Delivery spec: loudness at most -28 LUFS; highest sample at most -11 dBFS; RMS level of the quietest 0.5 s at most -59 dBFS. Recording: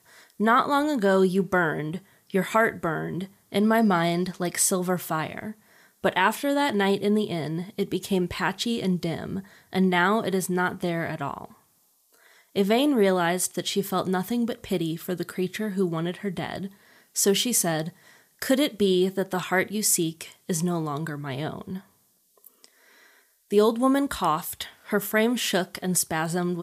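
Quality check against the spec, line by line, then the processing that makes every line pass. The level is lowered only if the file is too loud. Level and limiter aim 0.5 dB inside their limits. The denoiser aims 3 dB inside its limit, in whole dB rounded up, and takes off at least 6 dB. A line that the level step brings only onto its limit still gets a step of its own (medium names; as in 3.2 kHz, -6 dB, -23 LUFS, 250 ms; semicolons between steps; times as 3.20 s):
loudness -25.0 LUFS: fail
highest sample -8.5 dBFS: fail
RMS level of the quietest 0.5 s -65 dBFS: pass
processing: trim -3.5 dB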